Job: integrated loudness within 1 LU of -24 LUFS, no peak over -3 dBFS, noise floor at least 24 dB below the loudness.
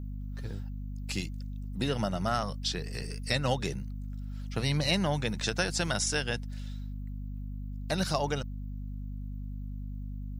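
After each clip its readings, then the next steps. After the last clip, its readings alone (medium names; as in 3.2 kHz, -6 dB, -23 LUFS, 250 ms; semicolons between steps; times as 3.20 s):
hum 50 Hz; highest harmonic 250 Hz; hum level -35 dBFS; loudness -33.0 LUFS; peak level -11.5 dBFS; loudness target -24.0 LUFS
-> hum notches 50/100/150/200/250 Hz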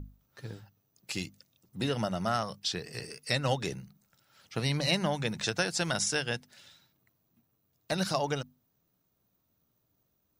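hum not found; loudness -32.0 LUFS; peak level -11.5 dBFS; loudness target -24.0 LUFS
-> trim +8 dB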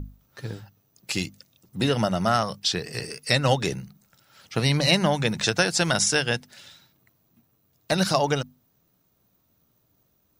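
loudness -24.0 LUFS; peak level -3.5 dBFS; noise floor -68 dBFS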